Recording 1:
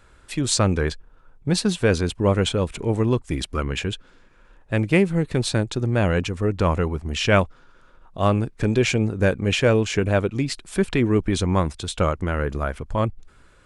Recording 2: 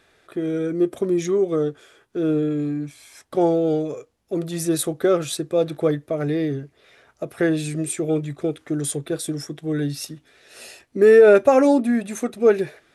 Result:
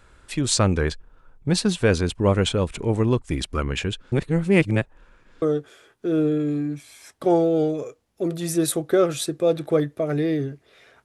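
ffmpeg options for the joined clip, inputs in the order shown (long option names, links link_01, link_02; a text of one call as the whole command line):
ffmpeg -i cue0.wav -i cue1.wav -filter_complex "[0:a]apad=whole_dur=11.04,atrim=end=11.04,asplit=2[link_01][link_02];[link_01]atrim=end=4.122[link_03];[link_02]atrim=start=4.118:end=5.422,asetpts=PTS-STARTPTS,areverse[link_04];[1:a]atrim=start=1.528:end=7.15[link_05];[link_03][link_04]acrossfade=duration=0.004:curve1=hsin:curve2=hsin[link_06];[link_06][link_05]acrossfade=duration=0.004:curve1=hsin:curve2=hsin" out.wav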